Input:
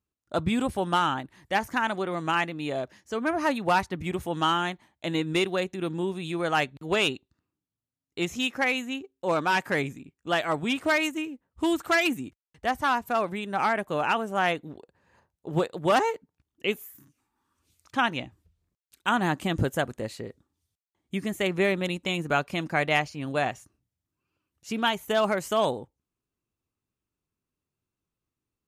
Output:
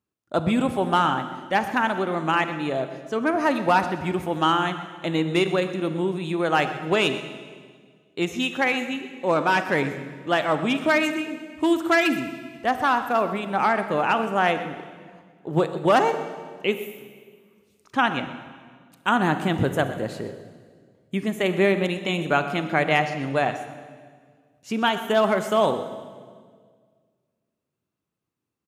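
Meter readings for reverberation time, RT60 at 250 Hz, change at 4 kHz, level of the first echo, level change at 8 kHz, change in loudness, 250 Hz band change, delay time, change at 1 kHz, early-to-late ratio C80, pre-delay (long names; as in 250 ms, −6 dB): 1.8 s, 2.1 s, +1.5 dB, −15.5 dB, −0.5 dB, +4.0 dB, +5.0 dB, 125 ms, +4.5 dB, 10.5 dB, 31 ms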